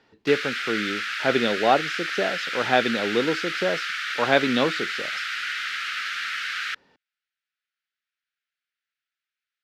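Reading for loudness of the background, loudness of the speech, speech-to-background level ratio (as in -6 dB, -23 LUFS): -28.0 LUFS, -25.0 LUFS, 3.0 dB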